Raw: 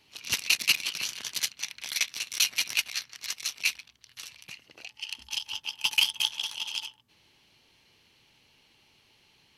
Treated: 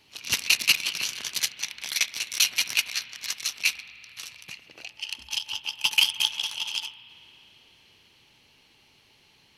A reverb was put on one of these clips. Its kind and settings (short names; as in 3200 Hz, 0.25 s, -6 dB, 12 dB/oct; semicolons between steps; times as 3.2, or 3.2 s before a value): spring tank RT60 3.9 s, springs 34 ms, chirp 50 ms, DRR 14 dB; gain +3 dB